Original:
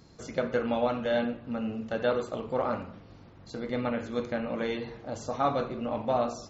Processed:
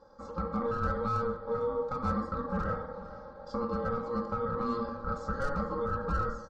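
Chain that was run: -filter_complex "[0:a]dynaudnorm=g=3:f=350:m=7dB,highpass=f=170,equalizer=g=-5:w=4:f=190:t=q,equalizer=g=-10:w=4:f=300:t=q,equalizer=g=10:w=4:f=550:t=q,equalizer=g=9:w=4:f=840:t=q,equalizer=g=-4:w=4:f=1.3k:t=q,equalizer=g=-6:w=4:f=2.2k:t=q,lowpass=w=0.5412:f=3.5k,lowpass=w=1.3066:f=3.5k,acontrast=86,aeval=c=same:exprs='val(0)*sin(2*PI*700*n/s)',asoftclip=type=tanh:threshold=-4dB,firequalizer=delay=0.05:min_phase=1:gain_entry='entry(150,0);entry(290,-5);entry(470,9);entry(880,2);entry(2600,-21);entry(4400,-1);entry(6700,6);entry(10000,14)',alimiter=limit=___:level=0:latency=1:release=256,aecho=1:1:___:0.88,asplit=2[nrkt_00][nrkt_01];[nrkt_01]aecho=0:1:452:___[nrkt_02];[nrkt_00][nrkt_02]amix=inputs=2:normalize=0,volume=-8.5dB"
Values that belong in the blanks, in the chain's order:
-15dB, 3.7, 0.15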